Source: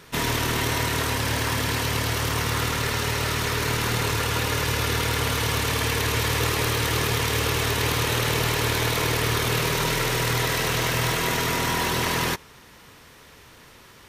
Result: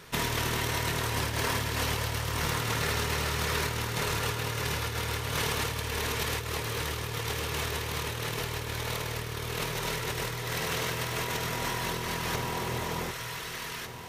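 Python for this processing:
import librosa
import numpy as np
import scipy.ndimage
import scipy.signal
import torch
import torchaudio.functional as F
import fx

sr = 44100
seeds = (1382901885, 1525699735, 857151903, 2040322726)

y = fx.peak_eq(x, sr, hz=280.0, db=-8.0, octaves=0.21)
y = fx.echo_alternate(y, sr, ms=755, hz=1100.0, feedback_pct=54, wet_db=-5.5)
y = fx.over_compress(y, sr, threshold_db=-26.0, ratio=-0.5)
y = y * 10.0 ** (-4.5 / 20.0)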